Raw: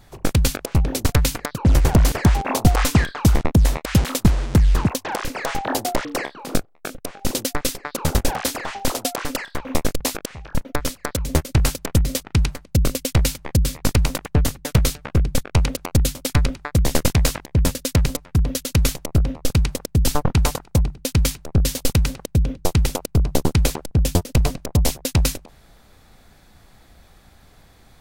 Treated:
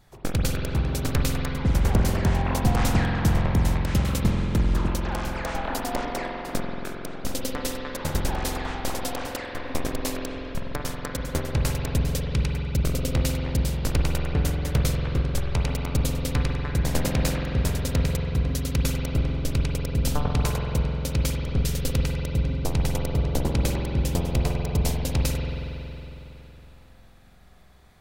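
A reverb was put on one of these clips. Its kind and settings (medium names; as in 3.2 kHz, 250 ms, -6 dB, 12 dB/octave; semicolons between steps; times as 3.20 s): spring tank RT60 3.4 s, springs 46 ms, chirp 40 ms, DRR -1 dB; trim -8 dB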